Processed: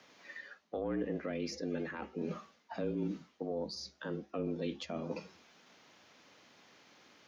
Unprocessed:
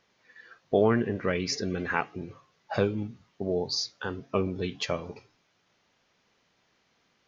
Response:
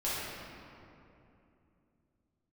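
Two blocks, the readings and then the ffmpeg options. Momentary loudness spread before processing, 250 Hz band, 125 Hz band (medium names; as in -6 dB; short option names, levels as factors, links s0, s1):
13 LU, -6.5 dB, -10.0 dB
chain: -filter_complex "[0:a]aeval=exprs='0.335*(cos(1*acos(clip(val(0)/0.335,-1,1)))-cos(1*PI/2))+0.0531*(cos(2*acos(clip(val(0)/0.335,-1,1)))-cos(2*PI/2))':c=same,areverse,acompressor=threshold=0.00708:ratio=4,areverse,afreqshift=70,acrossover=split=490[s0][s1];[s1]acompressor=threshold=0.00282:ratio=6[s2];[s0][s2]amix=inputs=2:normalize=0,volume=2.51"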